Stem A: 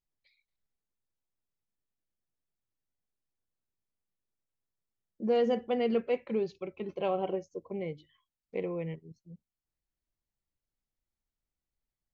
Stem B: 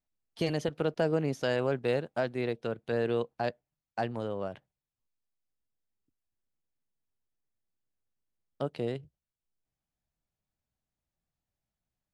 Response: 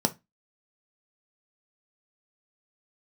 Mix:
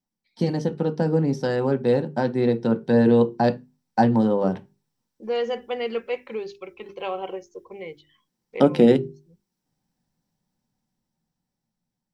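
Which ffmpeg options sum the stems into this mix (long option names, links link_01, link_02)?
-filter_complex "[0:a]equalizer=frequency=180:width_type=o:width=1.9:gain=-14.5,volume=-2dB,asplit=2[link_01][link_02];[1:a]volume=2.5dB,asplit=2[link_03][link_04];[link_04]volume=-10dB[link_05];[link_02]apad=whole_len=535128[link_06];[link_03][link_06]sidechaingate=range=-33dB:threshold=-51dB:ratio=16:detection=peak[link_07];[2:a]atrim=start_sample=2205[link_08];[link_05][link_08]afir=irnorm=-1:irlink=0[link_09];[link_01][link_07][link_09]amix=inputs=3:normalize=0,dynaudnorm=framelen=950:gausssize=5:maxgain=11.5dB,equalizer=frequency=640:width=6:gain=-11,bandreject=frequency=50:width_type=h:width=6,bandreject=frequency=100:width_type=h:width=6,bandreject=frequency=150:width_type=h:width=6,bandreject=frequency=200:width_type=h:width=6,bandreject=frequency=250:width_type=h:width=6,bandreject=frequency=300:width_type=h:width=6,bandreject=frequency=350:width_type=h:width=6,bandreject=frequency=400:width_type=h:width=6"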